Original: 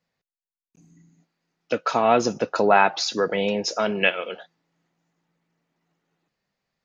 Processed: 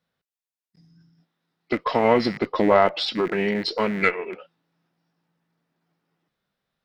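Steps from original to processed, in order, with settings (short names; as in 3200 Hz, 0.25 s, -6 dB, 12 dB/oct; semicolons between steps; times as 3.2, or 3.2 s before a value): rattling part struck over -40 dBFS, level -23 dBFS; formant shift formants -4 st; added harmonics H 4 -25 dB, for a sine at -3.5 dBFS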